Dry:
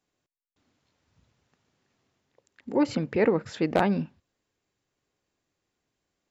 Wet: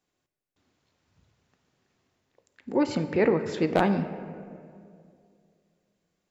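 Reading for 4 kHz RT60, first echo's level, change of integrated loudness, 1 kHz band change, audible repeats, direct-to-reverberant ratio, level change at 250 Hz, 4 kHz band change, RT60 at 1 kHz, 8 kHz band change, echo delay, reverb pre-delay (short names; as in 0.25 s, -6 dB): 1.2 s, none, 0.0 dB, +0.5 dB, none, 8.5 dB, +0.5 dB, +0.5 dB, 2.1 s, n/a, none, 3 ms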